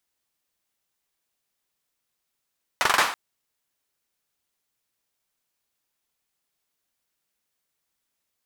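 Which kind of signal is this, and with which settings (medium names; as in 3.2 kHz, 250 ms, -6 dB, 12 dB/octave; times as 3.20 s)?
hand clap length 0.33 s, bursts 5, apart 43 ms, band 1.2 kHz, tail 0.48 s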